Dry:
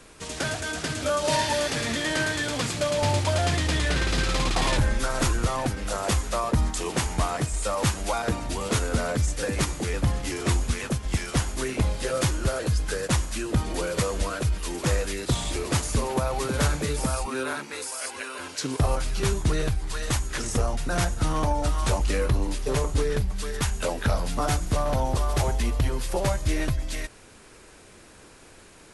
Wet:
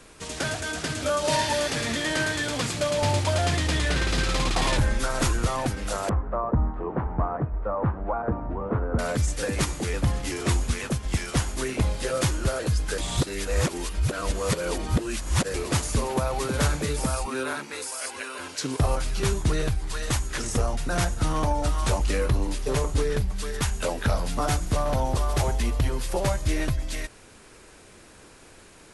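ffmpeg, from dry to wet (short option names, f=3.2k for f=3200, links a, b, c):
-filter_complex "[0:a]asettb=1/sr,asplit=3[a][b][c];[a]atrim=end=6.094[d];[b]atrim=start=6.09:end=8.99,asetpts=PTS-STARTPTS,afade=t=in:d=0.004:c=qsin,afade=t=out:st=2.896:d=0.004:c=qsin,lowpass=f=1.3k:w=0.5412,lowpass=f=1.3k:w=1.3066[e];[c]atrim=start=8.986[f];[d][e]acrossfade=d=0.004:c1=hsin:c2=qsin[g];[g][f]acrossfade=d=0.004:c1=qsin:c2=hsin,asplit=3[h][i][j];[h]atrim=end=12.982[k];[i]atrim=start=12.978:end=15.542,asetpts=PTS-STARTPTS,areverse[l];[j]atrim=start=15.538[m];[k][l]acrossfade=d=0.004:c1=hsin:c2=hsin[n];[n][m]acrossfade=d=0.004:c1=hsin:c2=hsin"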